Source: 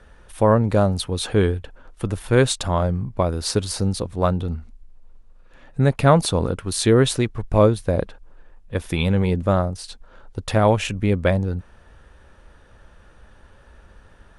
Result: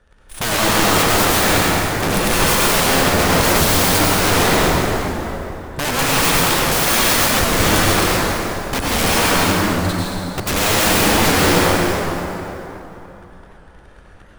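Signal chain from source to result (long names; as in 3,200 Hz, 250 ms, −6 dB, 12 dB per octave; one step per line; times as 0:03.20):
0:02.09–0:02.78: comb filter 2.2 ms, depth 44%
0:06.37–0:07.11: Bessel high-pass filter 210 Hz, order 6
leveller curve on the samples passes 3
0:09.33–0:09.85: formant resonators in series u
wrap-around overflow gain 14 dB
on a send: echo with a time of its own for lows and highs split 910 Hz, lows 277 ms, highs 141 ms, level −13 dB
on the sum: dense smooth reverb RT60 3.3 s, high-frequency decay 0.6×, pre-delay 80 ms, DRR −6 dB
wow of a warped record 78 rpm, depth 160 cents
level −2 dB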